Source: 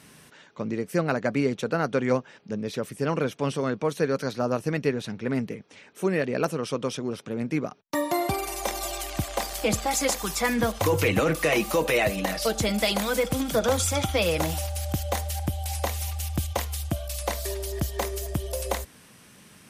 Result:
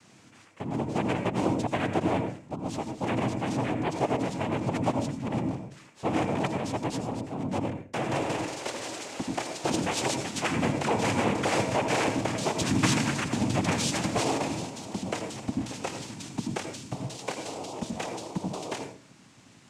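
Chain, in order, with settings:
0:12.53–0:14.00: comb filter 1 ms, depth 87%
cochlear-implant simulation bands 4
on a send: convolution reverb RT60 0.35 s, pre-delay 76 ms, DRR 7 dB
on the sum: level −4 dB

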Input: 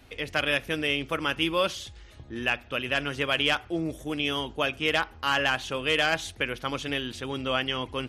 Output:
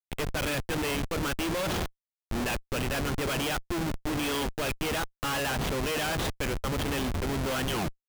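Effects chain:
turntable brake at the end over 0.35 s
harmonic generator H 7 −39 dB, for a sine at −12 dBFS
comparator with hysteresis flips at −34 dBFS

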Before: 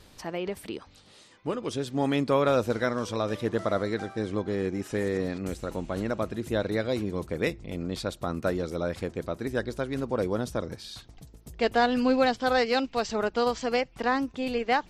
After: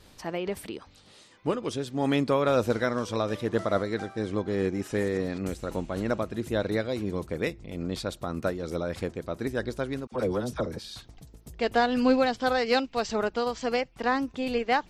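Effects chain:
0:10.07–0:10.79: all-pass dispersion lows, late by 52 ms, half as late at 860 Hz
amplitude modulation by smooth noise, depth 65%
level +3.5 dB

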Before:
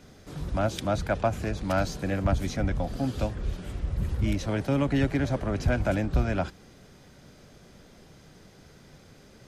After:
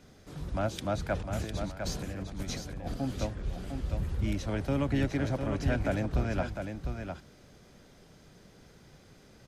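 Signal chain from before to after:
0:01.14–0:02.94: compressor whose output falls as the input rises −32 dBFS, ratio −0.5
on a send: single-tap delay 704 ms −6.5 dB
on the sum: level −4.5 dB

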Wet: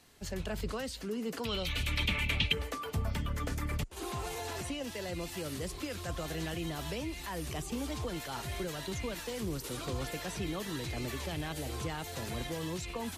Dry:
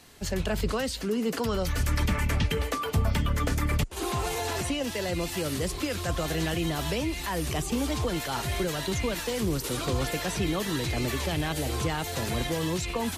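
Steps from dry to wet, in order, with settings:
0:01.45–0:02.53: flat-topped bell 3,000 Hz +14.5 dB 1.1 octaves
level −8.5 dB

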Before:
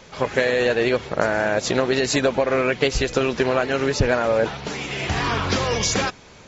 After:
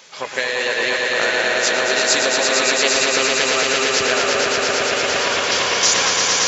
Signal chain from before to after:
high-pass filter 900 Hz 6 dB per octave
high-shelf EQ 3,300 Hz +9 dB
echo that builds up and dies away 114 ms, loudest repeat 5, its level −4.5 dB

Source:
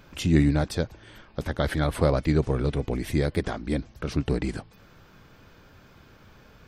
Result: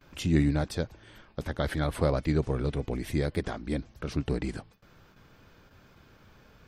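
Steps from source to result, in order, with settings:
noise gate with hold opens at −43 dBFS
level −4 dB

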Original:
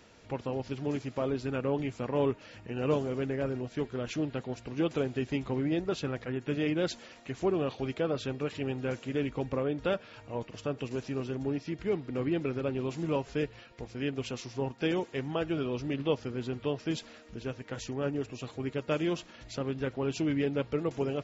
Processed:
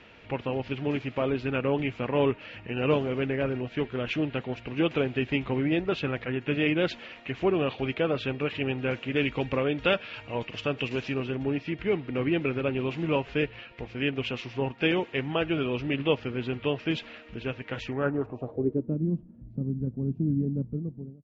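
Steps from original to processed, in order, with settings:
fade-out on the ending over 0.64 s
0:09.16–0:11.14: high-shelf EQ 3,500 Hz +11 dB
low-pass filter sweep 2,700 Hz → 200 Hz, 0:17.81–0:19.00
level +3.5 dB

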